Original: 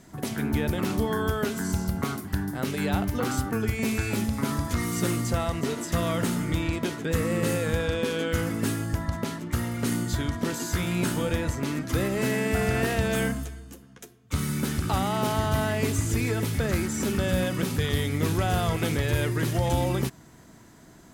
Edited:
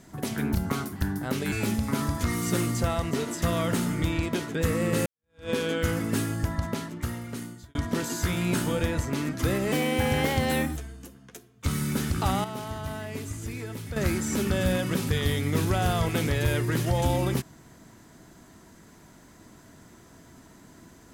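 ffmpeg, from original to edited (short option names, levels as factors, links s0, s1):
-filter_complex "[0:a]asplit=9[s0][s1][s2][s3][s4][s5][s6][s7][s8];[s0]atrim=end=0.552[s9];[s1]atrim=start=1.868:end=2.842[s10];[s2]atrim=start=4.018:end=7.56,asetpts=PTS-STARTPTS,afade=t=out:st=3.538:d=0.004:c=hsin[s11];[s3]atrim=start=7.56:end=10.25,asetpts=PTS-STARTPTS,afade=t=in:d=0.44:c=exp,afade=t=out:st=1.6:d=1.09[s12];[s4]atrim=start=10.25:end=12.224,asetpts=PTS-STARTPTS,afade=t=in:d=0.004:c=hsin[s13];[s5]atrim=start=12.22:end=13.44,asetpts=PTS-STARTPTS,asetrate=51597,aresample=44100[s14];[s6]atrim=start=13.436:end=15.122[s15];[s7]atrim=start=15.118:end=16.642,asetpts=PTS-STARTPTS,volume=0.335[s16];[s8]atrim=start=16.638[s17];[s9][s10]acrossfade=d=0.004:c1=hsin:c2=hsin[s18];[s11][s12][s13]concat=n=3:v=0:a=1[s19];[s18][s19]acrossfade=d=0.004:c1=hsin:c2=hsin[s20];[s20][s14]acrossfade=d=0.004:c1=hsin:c2=hsin[s21];[s21][s15]acrossfade=d=0.004:c1=hsin:c2=hsin[s22];[s22][s16]acrossfade=d=0.004:c1=hsin:c2=hsin[s23];[s23][s17]acrossfade=d=0.004:c1=hsin:c2=hsin"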